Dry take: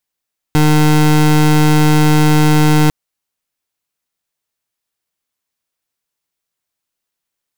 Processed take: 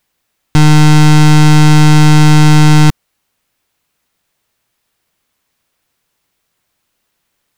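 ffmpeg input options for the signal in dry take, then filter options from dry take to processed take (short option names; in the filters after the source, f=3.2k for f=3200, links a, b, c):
-f lavfi -i "aevalsrc='0.335*(2*lt(mod(152*t,1),0.26)-1)':d=2.35:s=44100"
-filter_complex "[0:a]bass=f=250:g=3,treble=f=4k:g=-5,asplit=2[a][b];[b]aeval=exprs='0.501*sin(PI/2*5.01*val(0)/0.501)':c=same,volume=-4dB[c];[a][c]amix=inputs=2:normalize=0"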